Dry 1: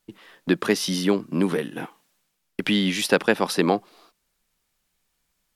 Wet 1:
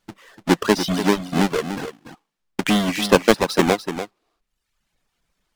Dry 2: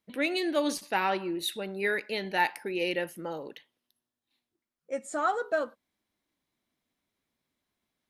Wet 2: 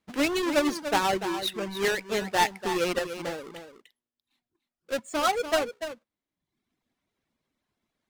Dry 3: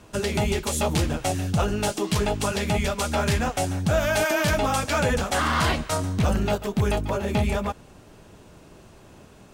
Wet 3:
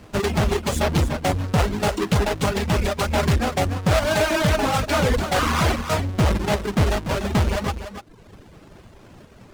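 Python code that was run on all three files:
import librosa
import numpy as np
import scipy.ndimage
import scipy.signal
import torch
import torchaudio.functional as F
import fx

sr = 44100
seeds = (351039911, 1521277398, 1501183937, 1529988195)

p1 = fx.halfwave_hold(x, sr)
p2 = fx.dereverb_blind(p1, sr, rt60_s=1.0)
p3 = fx.high_shelf(p2, sr, hz=11000.0, db=-11.5)
y = p3 + fx.echo_single(p3, sr, ms=292, db=-10.0, dry=0)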